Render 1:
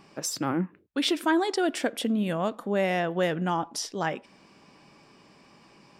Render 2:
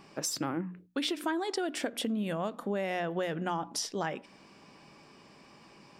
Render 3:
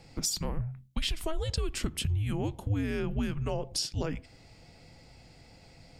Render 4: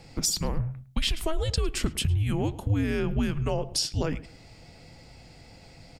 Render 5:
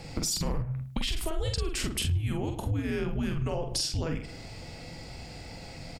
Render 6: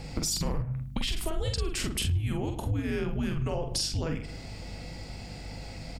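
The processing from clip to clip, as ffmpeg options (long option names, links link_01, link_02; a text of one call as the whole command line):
ffmpeg -i in.wav -af "bandreject=frequency=60:width_type=h:width=6,bandreject=frequency=120:width_type=h:width=6,bandreject=frequency=180:width_type=h:width=6,bandreject=frequency=240:width_type=h:width=6,bandreject=frequency=300:width_type=h:width=6,acompressor=threshold=-29dB:ratio=6" out.wav
ffmpeg -i in.wav -af "equalizer=frequency=1600:width_type=o:width=1.3:gain=-9.5,afreqshift=-310,volume=3.5dB" out.wav
ffmpeg -i in.wav -filter_complex "[0:a]asplit=2[link_01][link_02];[link_02]adelay=107,lowpass=frequency=3100:poles=1,volume=-18dB,asplit=2[link_03][link_04];[link_04]adelay=107,lowpass=frequency=3100:poles=1,volume=0.28[link_05];[link_01][link_03][link_05]amix=inputs=3:normalize=0,volume=4.5dB" out.wav
ffmpeg -i in.wav -filter_complex "[0:a]alimiter=limit=-20.5dB:level=0:latency=1:release=21,acompressor=threshold=-34dB:ratio=6,asplit=2[link_01][link_02];[link_02]adelay=46,volume=-5dB[link_03];[link_01][link_03]amix=inputs=2:normalize=0,volume=6dB" out.wav
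ffmpeg -i in.wav -af "aeval=exprs='val(0)+0.00794*(sin(2*PI*50*n/s)+sin(2*PI*2*50*n/s)/2+sin(2*PI*3*50*n/s)/3+sin(2*PI*4*50*n/s)/4+sin(2*PI*5*50*n/s)/5)':channel_layout=same" out.wav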